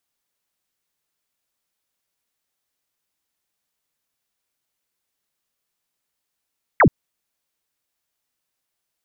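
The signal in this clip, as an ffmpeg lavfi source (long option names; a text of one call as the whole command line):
ffmpeg -f lavfi -i "aevalsrc='0.355*clip(t/0.002,0,1)*clip((0.08-t)/0.002,0,1)*sin(2*PI*2300*0.08/log(100/2300)*(exp(log(100/2300)*t/0.08)-1))':duration=0.08:sample_rate=44100" out.wav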